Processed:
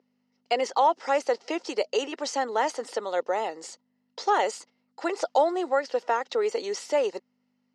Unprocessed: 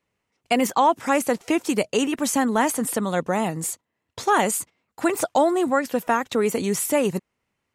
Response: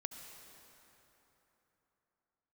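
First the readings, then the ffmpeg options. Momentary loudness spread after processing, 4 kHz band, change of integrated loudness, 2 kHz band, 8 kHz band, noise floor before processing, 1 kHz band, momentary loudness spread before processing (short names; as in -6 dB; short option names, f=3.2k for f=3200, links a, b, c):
9 LU, -3.0 dB, -4.5 dB, -6.0 dB, -12.5 dB, -79 dBFS, -3.0 dB, 8 LU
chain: -af "aeval=exprs='val(0)+0.0112*(sin(2*PI*50*n/s)+sin(2*PI*2*50*n/s)/2+sin(2*PI*3*50*n/s)/3+sin(2*PI*4*50*n/s)/4+sin(2*PI*5*50*n/s)/5)':c=same,highpass=f=450:w=0.5412,highpass=f=450:w=1.3066,equalizer=f=670:t=q:w=4:g=-5,equalizer=f=1.1k:t=q:w=4:g=-9,equalizer=f=1.6k:t=q:w=4:g=-8,equalizer=f=2.4k:t=q:w=4:g=-10,equalizer=f=3.5k:t=q:w=4:g=-7,equalizer=f=5k:t=q:w=4:g=4,lowpass=f=5.1k:w=0.5412,lowpass=f=5.1k:w=1.3066,volume=1.5dB"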